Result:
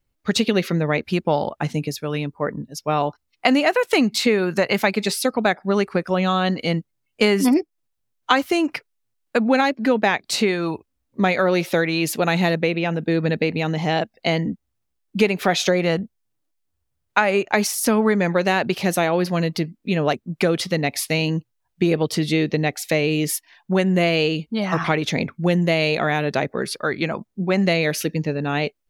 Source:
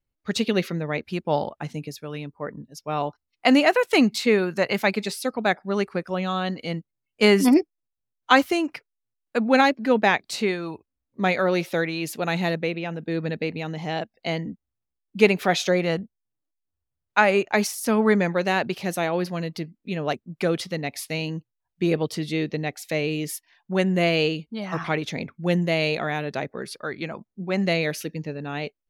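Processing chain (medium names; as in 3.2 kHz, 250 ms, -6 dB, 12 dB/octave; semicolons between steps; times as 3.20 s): compression 4:1, threshold -24 dBFS, peak gain reduction 12 dB; trim +8.5 dB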